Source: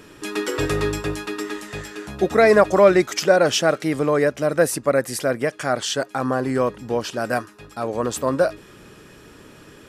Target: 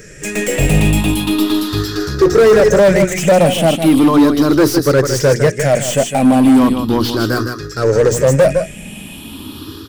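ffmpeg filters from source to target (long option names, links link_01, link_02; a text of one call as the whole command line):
ffmpeg -i in.wav -filter_complex "[0:a]afftfilt=real='re*pow(10,17/40*sin(2*PI*(0.54*log(max(b,1)*sr/1024/100)/log(2)-(0.37)*(pts-256)/sr)))':imag='im*pow(10,17/40*sin(2*PI*(0.54*log(max(b,1)*sr/1024/100)/log(2)-(0.37)*(pts-256)/sr)))':win_size=1024:overlap=0.75,equalizer=frequency=890:width_type=o:width=2.2:gain=-11.5,bandreject=frequency=60:width_type=h:width=6,bandreject=frequency=120:width_type=h:width=6,bandreject=frequency=180:width_type=h:width=6,bandreject=frequency=240:width_type=h:width=6,bandreject=frequency=300:width_type=h:width=6,bandreject=frequency=360:width_type=h:width=6,bandreject=frequency=420:width_type=h:width=6,dynaudnorm=framelen=200:gausssize=3:maxgain=6.5dB,asplit=2[link_01][link_02];[link_02]aecho=0:1:156:0.299[link_03];[link_01][link_03]amix=inputs=2:normalize=0,aeval=exprs='0.2*(cos(1*acos(clip(val(0)/0.2,-1,1)))-cos(1*PI/2))+0.0126*(cos(4*acos(clip(val(0)/0.2,-1,1)))-cos(4*PI/2))':channel_layout=same,acrossover=split=910[link_04][link_05];[link_05]asoftclip=type=tanh:threshold=-29dB[link_06];[link_04][link_06]amix=inputs=2:normalize=0,volume=9dB" out.wav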